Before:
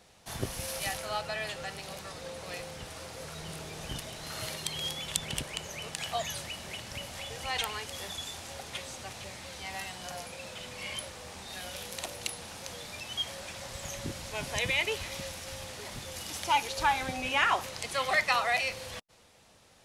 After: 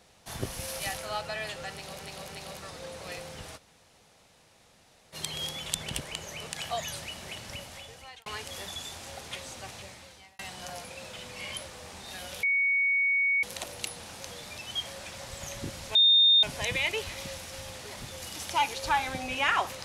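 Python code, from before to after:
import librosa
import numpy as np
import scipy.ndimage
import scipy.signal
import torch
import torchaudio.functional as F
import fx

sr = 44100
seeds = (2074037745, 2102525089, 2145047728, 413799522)

y = fx.edit(x, sr, fx.repeat(start_s=1.71, length_s=0.29, count=3),
    fx.room_tone_fill(start_s=2.99, length_s=1.57, crossfade_s=0.04),
    fx.fade_out_span(start_s=6.91, length_s=0.77),
    fx.fade_out_span(start_s=9.14, length_s=0.67),
    fx.insert_tone(at_s=11.85, length_s=1.0, hz=2230.0, db=-22.5),
    fx.insert_tone(at_s=14.37, length_s=0.48, hz=3650.0, db=-16.5), tone=tone)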